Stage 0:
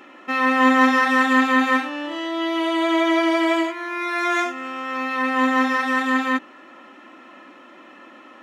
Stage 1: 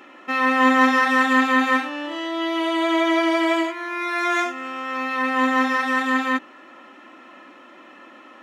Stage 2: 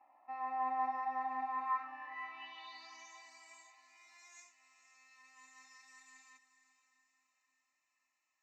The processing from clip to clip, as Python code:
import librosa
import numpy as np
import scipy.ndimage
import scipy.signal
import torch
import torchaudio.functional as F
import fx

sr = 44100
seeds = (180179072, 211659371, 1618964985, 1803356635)

y1 = fx.low_shelf(x, sr, hz=220.0, db=-3.5)
y2 = fx.filter_sweep_bandpass(y1, sr, from_hz=770.0, to_hz=7700.0, start_s=1.46, end_s=3.21, q=5.9)
y2 = fx.fixed_phaser(y2, sr, hz=2200.0, stages=8)
y2 = fx.echo_diffused(y2, sr, ms=499, feedback_pct=47, wet_db=-12.5)
y2 = F.gain(torch.from_numpy(y2), -7.0).numpy()